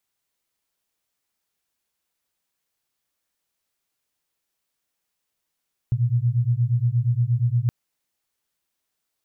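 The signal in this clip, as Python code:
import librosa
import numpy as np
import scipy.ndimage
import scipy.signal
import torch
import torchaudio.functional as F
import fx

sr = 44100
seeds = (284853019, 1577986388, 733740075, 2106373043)

y = fx.two_tone_beats(sr, length_s=1.77, hz=116.0, beat_hz=8.5, level_db=-21.0)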